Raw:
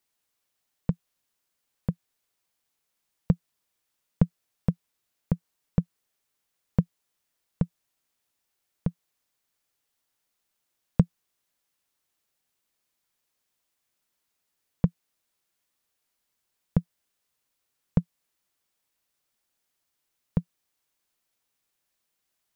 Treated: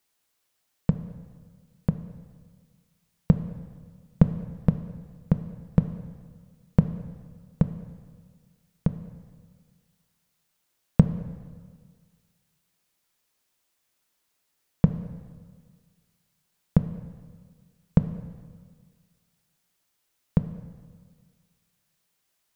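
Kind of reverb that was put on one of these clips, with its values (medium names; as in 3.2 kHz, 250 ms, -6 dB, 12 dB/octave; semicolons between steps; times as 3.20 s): plate-style reverb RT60 1.7 s, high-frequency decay 0.9×, DRR 9.5 dB; trim +4 dB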